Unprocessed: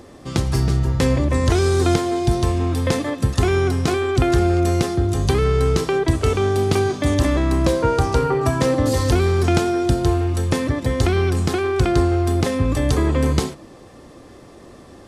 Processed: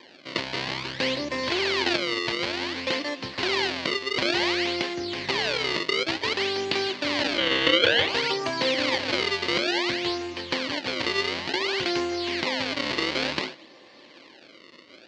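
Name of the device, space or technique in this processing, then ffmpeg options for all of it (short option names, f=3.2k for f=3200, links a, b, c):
circuit-bent sampling toy: -filter_complex "[0:a]acrusher=samples=31:mix=1:aa=0.000001:lfo=1:lforange=49.6:lforate=0.56,highpass=430,equalizer=f=440:t=q:w=4:g=-7,equalizer=f=730:t=q:w=4:g=-7,equalizer=f=1.3k:t=q:w=4:g=-8,equalizer=f=2.1k:t=q:w=4:g=5,equalizer=f=3k:t=q:w=4:g=5,equalizer=f=4.4k:t=q:w=4:g=9,lowpass=f=5.2k:w=0.5412,lowpass=f=5.2k:w=1.3066,asettb=1/sr,asplit=3[a][b][c];[a]atrim=end=7.384[d];[b]atrim=start=7.38:end=8.09,asetpts=PTS-STARTPTS,afade=t=in:d=0.004:c=qsin,afade=t=out:st=0.706:d=0.004:c=qsin,equalizer=f=100:t=o:w=0.33:g=12,equalizer=f=500:t=o:w=0.33:g=7,equalizer=f=1.6k:t=o:w=0.33:g=10,equalizer=f=3.15k:t=o:w=0.33:g=11,equalizer=f=5k:t=o:w=0.33:g=-8,equalizer=f=8k:t=o:w=0.33:g=-5[e];[c]atrim=start=8.086[f];[d][e]acrossfade=d=0.004:c1=hsin:c2=qsin[g];[g][f]acrossfade=d=0.004:c1=qsin:c2=hsin,volume=-1.5dB"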